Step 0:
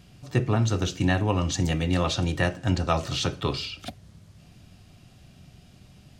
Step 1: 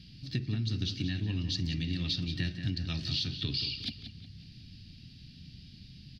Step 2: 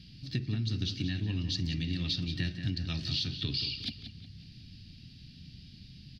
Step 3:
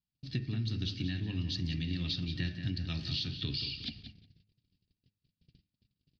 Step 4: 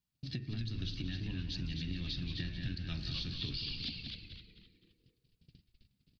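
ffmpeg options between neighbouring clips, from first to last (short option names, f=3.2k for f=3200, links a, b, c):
-filter_complex "[0:a]firequalizer=gain_entry='entry(270,0);entry(510,-22);entry(1100,-24);entry(1700,-6);entry(4600,11);entry(7000,-17);entry(11000,-14)':delay=0.05:min_phase=1,acompressor=threshold=-30dB:ratio=6,asplit=2[a][b];[b]adelay=181,lowpass=f=4.3k:p=1,volume=-9dB,asplit=2[c][d];[d]adelay=181,lowpass=f=4.3k:p=1,volume=0.45,asplit=2[e][f];[f]adelay=181,lowpass=f=4.3k:p=1,volume=0.45,asplit=2[g][h];[h]adelay=181,lowpass=f=4.3k:p=1,volume=0.45,asplit=2[i][j];[j]adelay=181,lowpass=f=4.3k:p=1,volume=0.45[k];[c][e][g][i][k]amix=inputs=5:normalize=0[l];[a][l]amix=inputs=2:normalize=0"
-af anull
-af "lowpass=5k,agate=range=-40dB:threshold=-45dB:ratio=16:detection=peak,bandreject=f=101.9:t=h:w=4,bandreject=f=203.8:t=h:w=4,bandreject=f=305.7:t=h:w=4,bandreject=f=407.6:t=h:w=4,bandreject=f=509.5:t=h:w=4,bandreject=f=611.4:t=h:w=4,bandreject=f=713.3:t=h:w=4,bandreject=f=815.2:t=h:w=4,bandreject=f=917.1:t=h:w=4,bandreject=f=1.019k:t=h:w=4,bandreject=f=1.1209k:t=h:w=4,bandreject=f=1.2228k:t=h:w=4,bandreject=f=1.3247k:t=h:w=4,bandreject=f=1.4266k:t=h:w=4,bandreject=f=1.5285k:t=h:w=4,bandreject=f=1.6304k:t=h:w=4,bandreject=f=1.7323k:t=h:w=4,bandreject=f=1.8342k:t=h:w=4,bandreject=f=1.9361k:t=h:w=4,bandreject=f=2.038k:t=h:w=4,bandreject=f=2.1399k:t=h:w=4,bandreject=f=2.2418k:t=h:w=4,bandreject=f=2.3437k:t=h:w=4,bandreject=f=2.4456k:t=h:w=4,bandreject=f=2.5475k:t=h:w=4,bandreject=f=2.6494k:t=h:w=4,bandreject=f=2.7513k:t=h:w=4,volume=-1.5dB"
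-filter_complex "[0:a]acompressor=threshold=-42dB:ratio=3,asplit=5[a][b][c][d][e];[b]adelay=258,afreqshift=-140,volume=-5dB[f];[c]adelay=516,afreqshift=-280,volume=-14.9dB[g];[d]adelay=774,afreqshift=-420,volume=-24.8dB[h];[e]adelay=1032,afreqshift=-560,volume=-34.7dB[i];[a][f][g][h][i]amix=inputs=5:normalize=0,volume=3dB"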